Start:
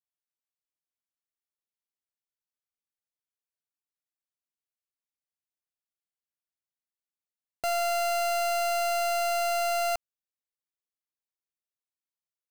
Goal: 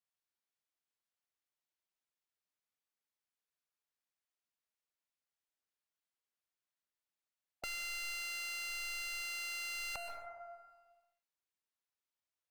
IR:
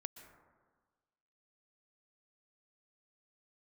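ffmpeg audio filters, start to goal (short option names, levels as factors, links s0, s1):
-filter_complex "[1:a]atrim=start_sample=2205[s0];[0:a][s0]afir=irnorm=-1:irlink=0,volume=53.1,asoftclip=hard,volume=0.0188,asplit=2[s1][s2];[s2]highpass=f=720:p=1,volume=1.41,asoftclip=type=tanh:threshold=0.0188[s3];[s1][s3]amix=inputs=2:normalize=0,lowpass=f=4500:p=1,volume=0.501,afftfilt=real='re*lt(hypot(re,im),0.0447)':imag='im*lt(hypot(re,im),0.0447)':win_size=1024:overlap=0.75,volume=1.88"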